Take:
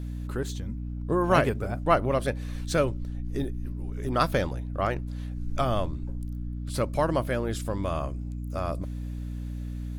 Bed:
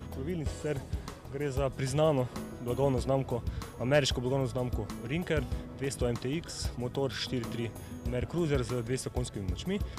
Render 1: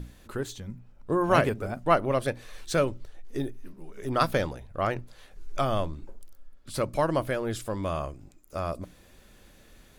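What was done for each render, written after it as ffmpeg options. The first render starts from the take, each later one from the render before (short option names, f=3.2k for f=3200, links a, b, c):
-af "bandreject=f=60:t=h:w=6,bandreject=f=120:t=h:w=6,bandreject=f=180:t=h:w=6,bandreject=f=240:t=h:w=6,bandreject=f=300:t=h:w=6"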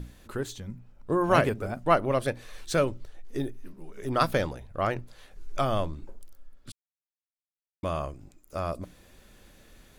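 -filter_complex "[0:a]asplit=3[a][b][c];[a]atrim=end=6.72,asetpts=PTS-STARTPTS,afade=t=out:st=6.716:d=0.004:c=hsin[d];[b]atrim=start=6.72:end=7.83,asetpts=PTS-STARTPTS,volume=0[e];[c]atrim=start=7.83,asetpts=PTS-STARTPTS,afade=t=in:d=0.004:c=hsin[f];[d][e][f]concat=n=3:v=0:a=1"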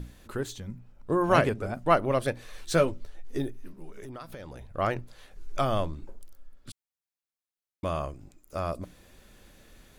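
-filter_complex "[0:a]asettb=1/sr,asplit=3[a][b][c];[a]atrim=end=1.344[d];[b]atrim=start=1.34:end=1.74,asetpts=PTS-STARTPTS,afade=t=in:d=0.004:c=qsin,afade=t=out:st=0.396:d=0.004:c=qsin,lowpass=11k[e];[c]atrim=start=1.736[f];[d][e]acrossfade=d=0.004:c1=hsin:c2=qsin[g];[g][f]acrossfade=d=0.004:c1=qsin:c2=hsin,asettb=1/sr,asplit=3[h][i][j];[h]atrim=end=2.654[k];[i]atrim=start=2.65:end=3.38,asetpts=PTS-STARTPTS,afade=t=in:d=0.004:c=qsin,afade=t=out:st=0.726:d=0.004:c=qsin,asplit=2[l][m];[m]adelay=12,volume=-7dB[n];[l][n]amix=inputs=2:normalize=0,atrim=end_sample=32193[o];[j]atrim=start=3.376[p];[k][o]acrossfade=d=0.004:c1=hsin:c2=qsin[q];[q][p]acrossfade=d=0.004:c1=qsin:c2=hsin,asettb=1/sr,asplit=3[r][s][t];[r]atrim=end=3.934[u];[s]atrim=start=3.93:end=4.73,asetpts=PTS-STARTPTS,afade=t=in:d=0.004:c=qsin,afade=t=out:st=0.796:d=0.004:c=qsin,acompressor=threshold=-37dB:ratio=16:attack=3.2:release=140:knee=1:detection=peak[v];[t]atrim=start=4.726[w];[u][v]acrossfade=d=0.004:c1=hsin:c2=qsin[x];[x][w]acrossfade=d=0.004:c1=qsin:c2=hsin"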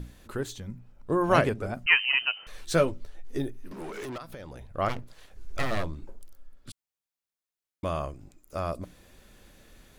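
-filter_complex "[0:a]asettb=1/sr,asplit=3[a][b][c];[a]atrim=end=1.864[d];[b]atrim=start=1.86:end=2.47,asetpts=PTS-STARTPTS,afade=t=in:d=0.004:c=qsin,afade=t=out:st=0.606:d=0.004:c=qsin,lowpass=f=2.6k:t=q:w=0.5098,lowpass=f=2.6k:t=q:w=0.6013,lowpass=f=2.6k:t=q:w=0.9,lowpass=f=2.6k:t=q:w=2.563,afreqshift=-3100[e];[c]atrim=start=2.466[f];[d][e]acrossfade=d=0.004:c1=hsin:c2=qsin[g];[g][f]acrossfade=d=0.004:c1=qsin:c2=hsin,asettb=1/sr,asplit=3[h][i][j];[h]atrim=end=3.714[k];[i]atrim=start=3.71:end=4.18,asetpts=PTS-STARTPTS,afade=t=in:d=0.004:c=qsin,afade=t=out:st=0.466:d=0.004:c=qsin,asplit=2[l][m];[m]highpass=f=720:p=1,volume=28dB,asoftclip=type=tanh:threshold=-30dB[n];[l][n]amix=inputs=2:normalize=0,lowpass=f=4.8k:p=1,volume=-6dB[o];[j]atrim=start=4.176[p];[k][o]acrossfade=d=0.004:c1=hsin:c2=qsin[q];[q][p]acrossfade=d=0.004:c1=qsin:c2=hsin,asplit=3[r][s][t];[r]afade=t=out:st=4.88:d=0.02[u];[s]aeval=exprs='abs(val(0))':c=same,afade=t=in:st=4.88:d=0.02,afade=t=out:st=5.83:d=0.02[v];[t]afade=t=in:st=5.83:d=0.02[w];[u][v][w]amix=inputs=3:normalize=0"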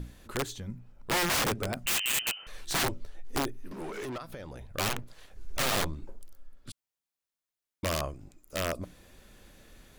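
-af "aeval=exprs='0.473*(cos(1*acos(clip(val(0)/0.473,-1,1)))-cos(1*PI/2))+0.0299*(cos(2*acos(clip(val(0)/0.473,-1,1)))-cos(2*PI/2))+0.00299*(cos(3*acos(clip(val(0)/0.473,-1,1)))-cos(3*PI/2))':c=same,aeval=exprs='(mod(13.3*val(0)+1,2)-1)/13.3':c=same"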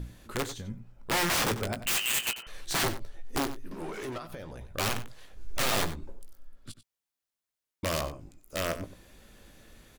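-filter_complex "[0:a]asplit=2[a][b];[b]adelay=18,volume=-10.5dB[c];[a][c]amix=inputs=2:normalize=0,asplit=2[d][e];[e]adelay=93.29,volume=-13dB,highshelf=f=4k:g=-2.1[f];[d][f]amix=inputs=2:normalize=0"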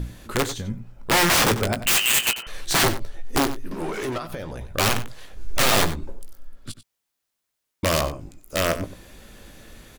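-af "volume=9dB"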